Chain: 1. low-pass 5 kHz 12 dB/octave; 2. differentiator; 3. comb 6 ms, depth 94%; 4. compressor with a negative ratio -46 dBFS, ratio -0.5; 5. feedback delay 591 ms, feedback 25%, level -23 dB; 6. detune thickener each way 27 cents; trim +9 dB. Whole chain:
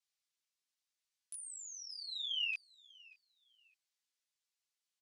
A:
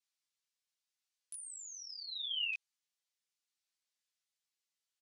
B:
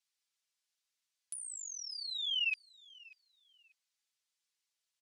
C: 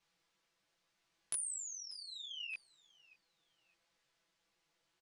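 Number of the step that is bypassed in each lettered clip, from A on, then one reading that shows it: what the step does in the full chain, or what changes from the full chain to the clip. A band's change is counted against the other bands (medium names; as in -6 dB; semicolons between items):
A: 5, momentary loudness spread change -12 LU; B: 6, crest factor change -2.5 dB; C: 2, crest factor change +7.0 dB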